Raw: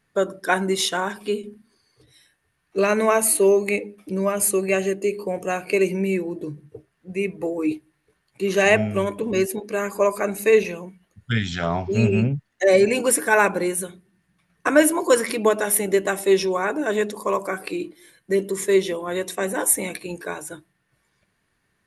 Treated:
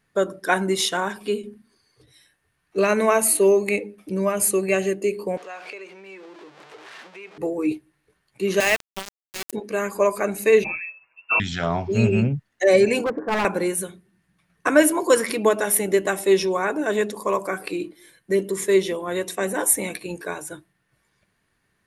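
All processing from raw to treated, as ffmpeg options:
ffmpeg -i in.wav -filter_complex "[0:a]asettb=1/sr,asplit=3[link_01][link_02][link_03];[link_01]atrim=end=5.374[link_04];[link_02]atrim=start=5.37:end=7.38,asetpts=PTS-STARTPTS,afade=type=in:duration=0.004:curve=qsin,afade=type=out:start_time=2.006:duration=0.004:curve=qsin,aeval=exprs='val(0)+0.5*0.0237*sgn(val(0))':channel_layout=same,acompressor=threshold=-33dB:ratio=3:attack=3.2:release=140:knee=1:detection=peak,highpass=620,lowpass=4600[link_05];[link_03]atrim=start=7.376[link_06];[link_04][link_05]acrossfade=duration=0.004:curve1=hsin:curve2=qsin[link_07];[link_07][link_06]acrossfade=duration=0.004:curve1=qsin:curve2=hsin,asettb=1/sr,asplit=3[link_08][link_09][link_10];[link_08]atrim=end=8.604[link_11];[link_09]atrim=start=8.6:end=9.53,asetpts=PTS-STARTPTS,afade=type=in:duration=0.004:curve=qsin,afade=type=out:start_time=0.926:duration=0.004:curve=qsin,highpass=frequency=1000:poles=1,aeval=exprs='val(0)*gte(abs(val(0)),0.0841)':channel_layout=same[link_12];[link_10]atrim=start=9.526[link_13];[link_11][link_12]acrossfade=duration=0.004:curve1=hsin:curve2=qsin[link_14];[link_14][link_13]acrossfade=duration=0.004:curve1=qsin:curve2=hsin,asettb=1/sr,asplit=3[link_15][link_16][link_17];[link_15]atrim=end=10.644[link_18];[link_16]atrim=start=10.64:end=11.4,asetpts=PTS-STARTPTS,afade=type=in:duration=0.004:curve=qsin,afade=type=out:start_time=0.756:duration=0.004:curve=qsin,aecho=1:1:6.5:0.9,atrim=end_sample=33516,lowpass=frequency=2400:width_type=q:width=0.5098,lowpass=frequency=2400:width_type=q:width=0.6013,lowpass=frequency=2400:width_type=q:width=0.9,lowpass=frequency=2400:width_type=q:width=2.563,afreqshift=-2800[link_19];[link_17]atrim=start=11.396[link_20];[link_18][link_19]acrossfade=duration=0.004:curve1=hsin:curve2=qsin[link_21];[link_21][link_20]acrossfade=duration=0.004:curve1=qsin:curve2=hsin,asettb=1/sr,asplit=3[link_22][link_23][link_24];[link_22]atrim=end=13.044[link_25];[link_23]atrim=start=13.04:end=13.45,asetpts=PTS-STARTPTS,afade=type=in:duration=0.004:curve=qsin,afade=type=out:start_time=0.406:duration=0.004:curve=qsin,lowpass=frequency=1100:width=0.5412,lowpass=frequency=1100:width=1.3066,aeval=exprs='0.141*(abs(mod(val(0)/0.141+3,4)-2)-1)':channel_layout=same[link_26];[link_24]atrim=start=13.446[link_27];[link_25][link_26]acrossfade=duration=0.004:curve1=hsin:curve2=qsin[link_28];[link_28][link_27]acrossfade=duration=0.004:curve1=qsin:curve2=hsin" out.wav

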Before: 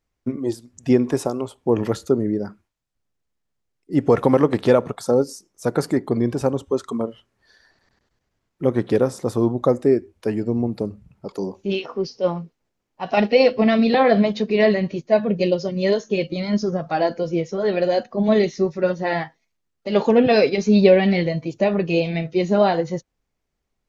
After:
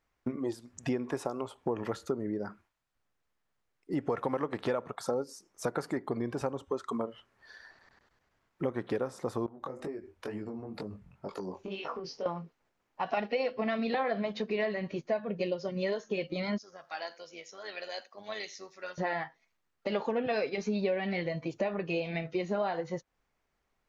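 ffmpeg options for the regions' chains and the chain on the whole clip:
ffmpeg -i in.wav -filter_complex "[0:a]asettb=1/sr,asplit=3[link_01][link_02][link_03];[link_01]atrim=end=9.464[link_04];[link_02]atrim=start=9.46:end=12.26,asetpts=PTS-STARTPTS,afade=type=in:duration=0.004:curve=qsin,afade=type=out:start_time=2.796:duration=0.004:curve=qsin,acompressor=threshold=-29dB:ratio=16:attack=3.2:release=140:knee=1:detection=peak,flanger=delay=19:depth=4.2:speed=2.1[link_05];[link_03]atrim=start=12.256[link_06];[link_04][link_05]acrossfade=duration=0.004:curve1=hsin:curve2=qsin[link_07];[link_07][link_06]acrossfade=duration=0.004:curve1=qsin:curve2=hsin,asettb=1/sr,asplit=3[link_08][link_09][link_10];[link_08]atrim=end=16.584[link_11];[link_09]atrim=start=16.58:end=18.98,asetpts=PTS-STARTPTS,afade=type=in:duration=0.004:curve=qsin,afade=type=out:start_time=2.396:duration=0.004:curve=qsin,aderivative,tremolo=f=100:d=0.462,aecho=1:1:83:0.0794,atrim=end_sample=105840[link_12];[link_10]atrim=start=18.976[link_13];[link_11][link_12]acrossfade=duration=0.004:curve1=hsin:curve2=qsin[link_14];[link_14][link_13]acrossfade=duration=0.004:curve1=qsin:curve2=hsin,equalizer=frequency=1300:width_type=o:width=2.7:gain=10,acompressor=threshold=-27dB:ratio=4,volume=-4.5dB" out.wav

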